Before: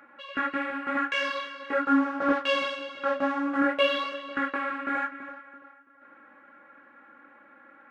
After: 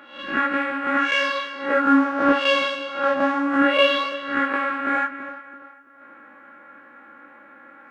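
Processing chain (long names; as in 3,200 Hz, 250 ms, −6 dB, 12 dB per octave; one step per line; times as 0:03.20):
peak hold with a rise ahead of every peak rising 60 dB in 0.50 s
level +5.5 dB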